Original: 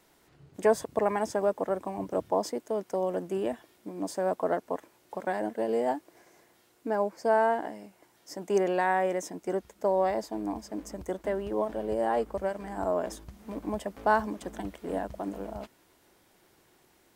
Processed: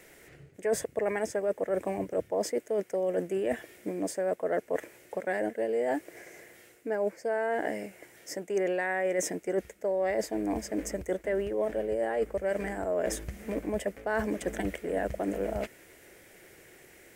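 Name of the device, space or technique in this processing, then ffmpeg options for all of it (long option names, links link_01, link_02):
compression on the reversed sound: -af "equalizer=frequency=250:width_type=o:width=1:gain=-4,equalizer=frequency=500:width_type=o:width=1:gain=7,equalizer=frequency=1000:width_type=o:width=1:gain=-12,equalizer=frequency=2000:width_type=o:width=1:gain=11,equalizer=frequency=4000:width_type=o:width=1:gain=-7,equalizer=frequency=8000:width_type=o:width=1:gain=3,areverse,acompressor=threshold=-35dB:ratio=6,areverse,volume=8dB"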